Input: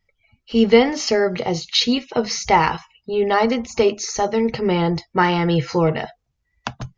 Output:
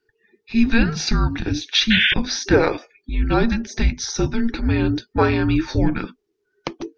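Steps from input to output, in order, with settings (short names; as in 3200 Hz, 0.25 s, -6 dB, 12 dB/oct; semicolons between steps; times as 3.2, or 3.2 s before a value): painted sound noise, 1.9–2.14, 1900–4100 Hz -17 dBFS; frequency shift -460 Hz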